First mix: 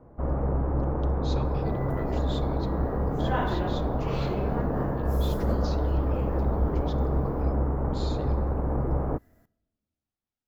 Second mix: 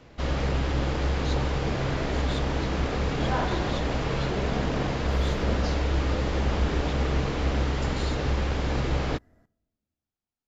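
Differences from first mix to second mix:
speech: remove distance through air 58 m; first sound: remove low-pass 1.1 kHz 24 dB/octave; second sound: add distance through air 70 m

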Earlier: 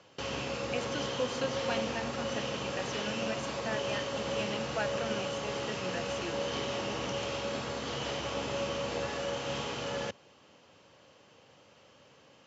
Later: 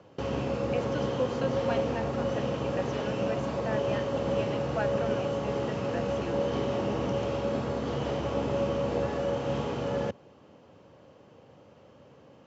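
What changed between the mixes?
speech: add frequency weighting A; master: add tilt shelf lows +9 dB, about 1.3 kHz

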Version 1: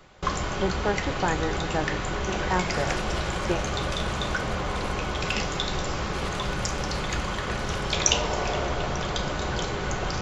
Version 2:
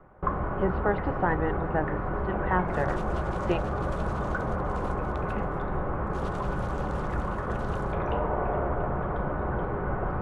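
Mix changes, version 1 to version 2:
first sound: add low-pass 1.4 kHz 24 dB/octave; second sound -11.5 dB

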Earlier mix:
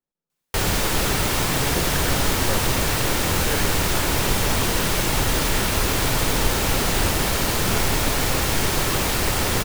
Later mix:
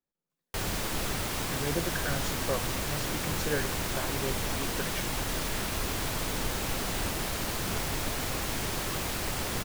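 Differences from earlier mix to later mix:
background -9.0 dB; reverb: off

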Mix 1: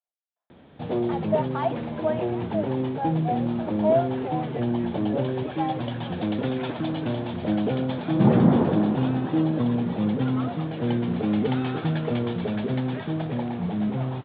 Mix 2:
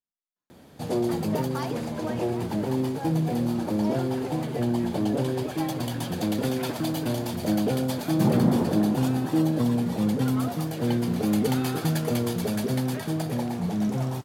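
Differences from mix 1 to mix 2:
speech: remove resonant high-pass 660 Hz, resonance Q 5.3; second sound -4.5 dB; master: remove steep low-pass 3.7 kHz 72 dB/octave

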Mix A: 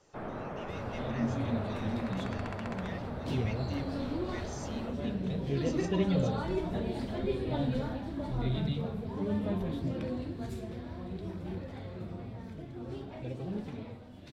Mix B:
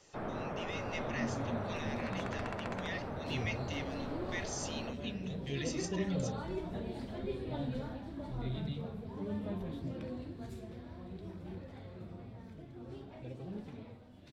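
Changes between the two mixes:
speech +7.0 dB; second sound -6.5 dB

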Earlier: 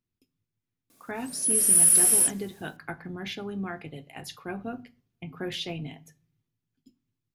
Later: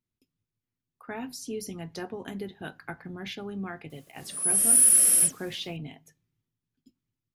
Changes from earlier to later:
speech: send -9.5 dB; background: entry +3.00 s

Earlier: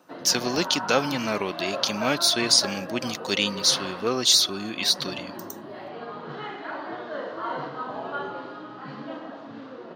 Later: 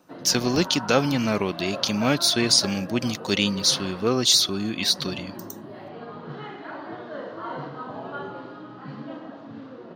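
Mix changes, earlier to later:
background -4.0 dB; master: add bass shelf 230 Hz +12 dB

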